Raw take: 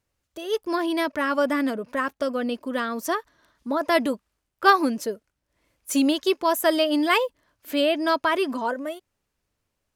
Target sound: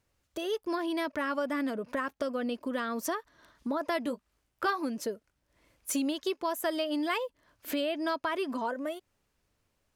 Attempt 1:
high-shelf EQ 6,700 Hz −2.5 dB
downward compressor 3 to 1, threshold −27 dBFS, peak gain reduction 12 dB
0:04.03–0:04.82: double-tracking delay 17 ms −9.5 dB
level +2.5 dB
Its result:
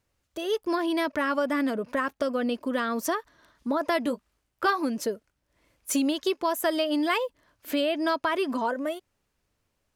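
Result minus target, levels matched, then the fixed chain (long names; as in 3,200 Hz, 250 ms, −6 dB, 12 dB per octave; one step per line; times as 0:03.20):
downward compressor: peak gain reduction −5.5 dB
high-shelf EQ 6,700 Hz −2.5 dB
downward compressor 3 to 1, threshold −35 dBFS, peak gain reduction 17.5 dB
0:04.03–0:04.82: double-tracking delay 17 ms −9.5 dB
level +2.5 dB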